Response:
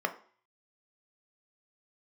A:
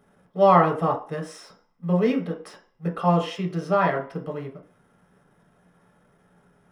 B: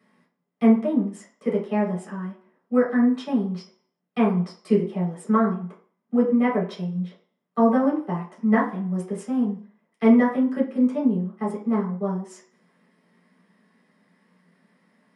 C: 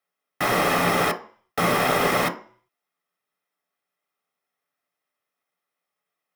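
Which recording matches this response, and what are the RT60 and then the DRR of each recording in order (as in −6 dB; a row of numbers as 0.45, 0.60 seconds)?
C; 0.45, 0.45, 0.45 seconds; 0.5, −8.0, 5.5 decibels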